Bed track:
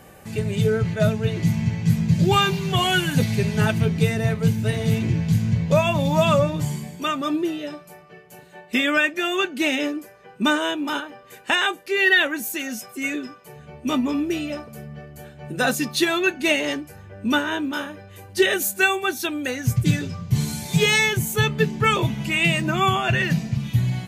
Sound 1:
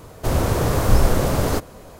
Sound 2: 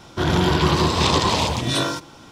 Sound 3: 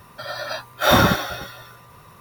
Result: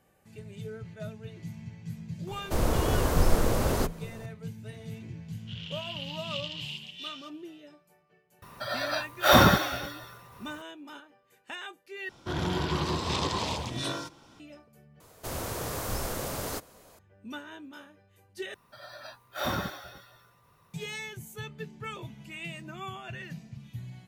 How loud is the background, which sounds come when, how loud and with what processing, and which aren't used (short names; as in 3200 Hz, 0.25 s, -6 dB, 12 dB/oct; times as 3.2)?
bed track -20 dB
2.27 add 1 -6 dB + frequency shift -34 Hz
5.3 add 2 -10.5 dB + ladder band-pass 3000 Hz, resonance 85%
8.42 add 3 -3.5 dB + vocal rider within 3 dB 2 s
12.09 replace with 2 -11.5 dB
15 replace with 1 -12 dB + tilt +2 dB/oct
18.54 replace with 3 -16 dB